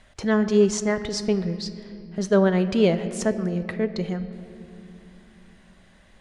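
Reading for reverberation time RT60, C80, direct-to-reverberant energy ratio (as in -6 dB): 2.7 s, 13.0 dB, 10.5 dB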